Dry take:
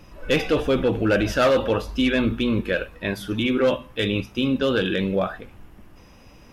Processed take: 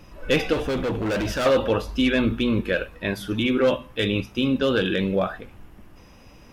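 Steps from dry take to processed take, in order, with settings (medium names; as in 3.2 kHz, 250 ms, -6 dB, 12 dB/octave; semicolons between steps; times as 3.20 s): 0.53–1.46 s: hard clipper -22 dBFS, distortion -12 dB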